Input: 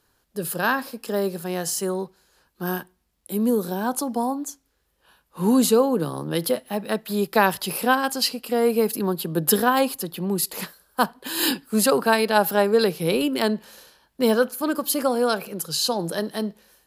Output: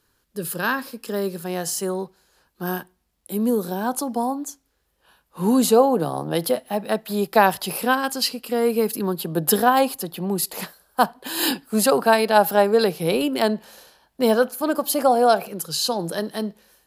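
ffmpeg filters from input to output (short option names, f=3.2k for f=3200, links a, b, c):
-af "asetnsamples=n=441:p=0,asendcmd='1.45 equalizer g 2;5.68 equalizer g 12.5;6.41 equalizer g 6.5;7.8 equalizer g -1.5;9.2 equalizer g 6.5;14.69 equalizer g 12.5;15.48 equalizer g 1',equalizer=f=720:t=o:w=0.53:g=-6.5"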